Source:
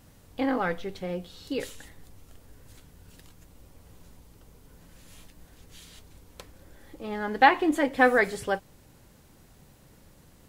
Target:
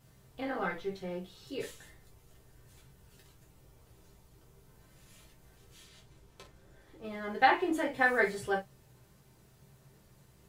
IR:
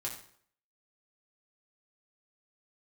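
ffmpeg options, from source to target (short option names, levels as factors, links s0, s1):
-filter_complex "[0:a]asettb=1/sr,asplit=3[s0][s1][s2];[s0]atrim=end=5.824[s3];[s1]atrim=start=5.82:end=7.04,asetpts=PTS-STARTPTS,afade=t=in:d=0.004:c=qsin,afade=t=out:st=1.216:d=0.004:c=qsin,highshelf=f=9600:g=-8.5[s4];[s2]atrim=start=7.036[s5];[s3][s4]acrossfade=d=0.004:c1=hsin:c2=qsin[s6];[s6][s5]acrossfade=d=0.004:c1=qsin:c2=hsin[s7];[1:a]atrim=start_sample=2205,atrim=end_sample=3528,asetrate=48510,aresample=44100[s8];[s7][s8]afir=irnorm=-1:irlink=0,volume=0.562"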